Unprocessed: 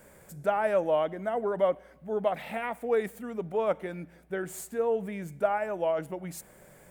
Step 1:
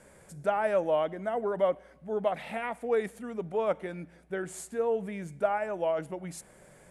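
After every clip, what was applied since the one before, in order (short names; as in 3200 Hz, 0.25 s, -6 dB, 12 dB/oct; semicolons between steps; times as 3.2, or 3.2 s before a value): elliptic low-pass 11000 Hz, stop band 60 dB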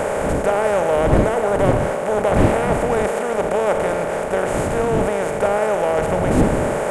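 per-bin compression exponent 0.2; wind noise 290 Hz -26 dBFS; gain +2.5 dB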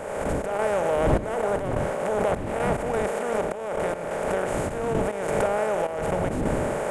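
step gate "...xx..xxxxxxx" 179 bpm -12 dB; backwards sustainer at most 35 dB/s; gain -6.5 dB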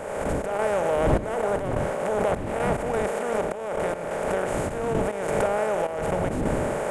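nothing audible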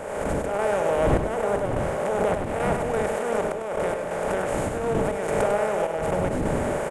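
echo 99 ms -7 dB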